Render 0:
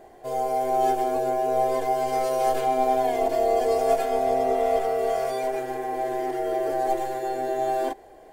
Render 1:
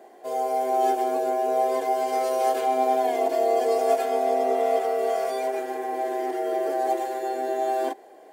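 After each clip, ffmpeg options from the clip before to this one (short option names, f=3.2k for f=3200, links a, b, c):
-af "highpass=f=230:w=0.5412,highpass=f=230:w=1.3066"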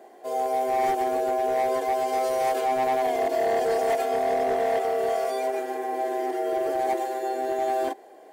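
-af "asoftclip=type=hard:threshold=-19.5dB"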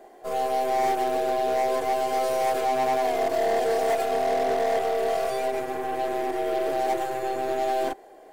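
-af "aeval=exprs='0.112*(cos(1*acos(clip(val(0)/0.112,-1,1)))-cos(1*PI/2))+0.01*(cos(6*acos(clip(val(0)/0.112,-1,1)))-cos(6*PI/2))':c=same"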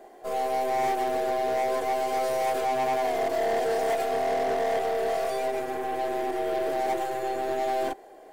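-af "asoftclip=type=tanh:threshold=-20.5dB"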